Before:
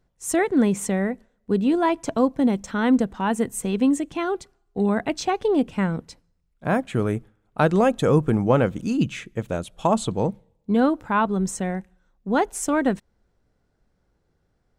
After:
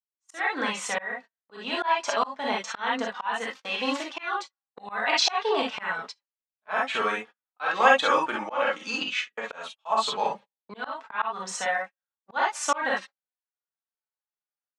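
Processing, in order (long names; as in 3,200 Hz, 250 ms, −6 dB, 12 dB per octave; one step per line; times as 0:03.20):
0:03.45–0:04.09: gap after every zero crossing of 0.076 ms
reverb whose tail is shaped and stops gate 80 ms rising, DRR −1.5 dB
0:09.02–0:09.61: downward compressor 2 to 1, threshold −22 dBFS, peak gain reduction 5.5 dB
flanger 0.24 Hz, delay 3.3 ms, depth 1.7 ms, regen −11%
automatic gain control gain up to 8 dB
noise gate −28 dBFS, range −36 dB
Chebyshev band-pass filter 1,000–4,500 Hz, order 2
volume swells 264 ms
level +5.5 dB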